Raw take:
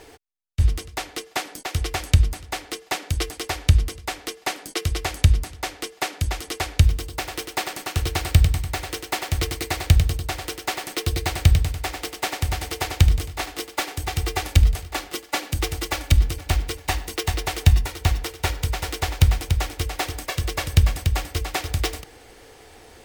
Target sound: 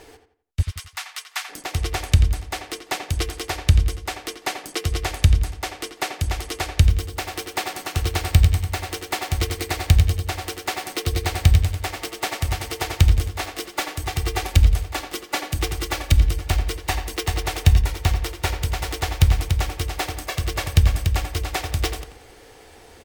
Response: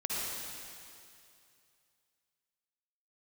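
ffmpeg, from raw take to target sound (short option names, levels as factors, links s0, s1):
-filter_complex "[0:a]asplit=3[s0][s1][s2];[s0]afade=t=out:st=0.61:d=0.02[s3];[s1]highpass=f=1000:w=0.5412,highpass=f=1000:w=1.3066,afade=t=in:st=0.61:d=0.02,afade=t=out:st=1.48:d=0.02[s4];[s2]afade=t=in:st=1.48:d=0.02[s5];[s3][s4][s5]amix=inputs=3:normalize=0,asplit=2[s6][s7];[s7]adelay=86,lowpass=f=3200:p=1,volume=0.376,asplit=2[s8][s9];[s9]adelay=86,lowpass=f=3200:p=1,volume=0.34,asplit=2[s10][s11];[s11]adelay=86,lowpass=f=3200:p=1,volume=0.34,asplit=2[s12][s13];[s13]adelay=86,lowpass=f=3200:p=1,volume=0.34[s14];[s6][s8][s10][s12][s14]amix=inputs=5:normalize=0" -ar 48000 -c:a libvorbis -b:a 128k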